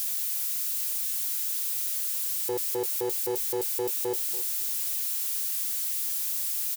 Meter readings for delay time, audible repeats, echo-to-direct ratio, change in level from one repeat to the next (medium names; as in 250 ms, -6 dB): 284 ms, 2, -16.0 dB, -14.5 dB